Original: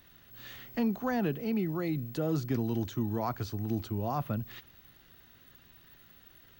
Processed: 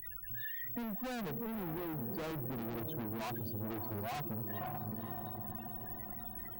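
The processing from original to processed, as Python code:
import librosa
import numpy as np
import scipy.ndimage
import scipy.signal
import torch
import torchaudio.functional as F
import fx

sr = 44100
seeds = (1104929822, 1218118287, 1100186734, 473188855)

y = fx.high_shelf(x, sr, hz=2900.0, db=2.5)
y = fx.hpss(y, sr, part='percussive', gain_db=-5)
y = fx.low_shelf(y, sr, hz=300.0, db=-9.0)
y = fx.spec_topn(y, sr, count=8)
y = fx.echo_diffused(y, sr, ms=543, feedback_pct=41, wet_db=-11.5)
y = fx.tube_stage(y, sr, drive_db=52.0, bias=0.65)
y = fx.band_squash(y, sr, depth_pct=70)
y = F.gain(torch.from_numpy(y), 13.0).numpy()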